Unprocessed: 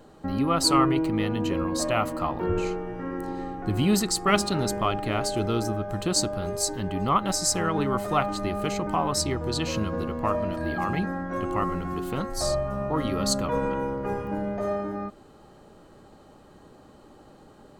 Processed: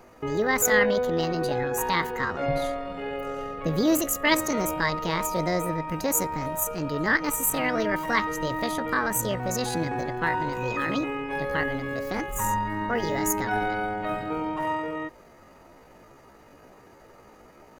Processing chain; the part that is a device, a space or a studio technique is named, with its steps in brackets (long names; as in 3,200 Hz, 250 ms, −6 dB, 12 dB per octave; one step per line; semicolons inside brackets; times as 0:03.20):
chipmunk voice (pitch shifter +7.5 semitones)